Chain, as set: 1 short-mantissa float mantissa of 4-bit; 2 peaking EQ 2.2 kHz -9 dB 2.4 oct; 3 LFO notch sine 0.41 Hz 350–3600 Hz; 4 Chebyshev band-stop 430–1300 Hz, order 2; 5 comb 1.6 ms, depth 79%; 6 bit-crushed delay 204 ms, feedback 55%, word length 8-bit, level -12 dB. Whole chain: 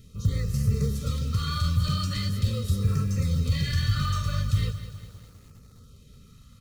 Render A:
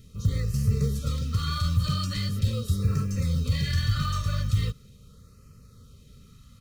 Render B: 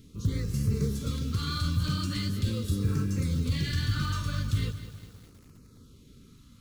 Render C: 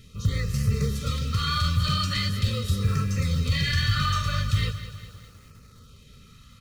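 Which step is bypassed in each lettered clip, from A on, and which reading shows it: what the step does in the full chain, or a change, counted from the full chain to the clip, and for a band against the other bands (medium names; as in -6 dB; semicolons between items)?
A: 6, momentary loudness spread change -1 LU; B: 5, 1 kHz band -2.5 dB; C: 2, 2 kHz band +6.5 dB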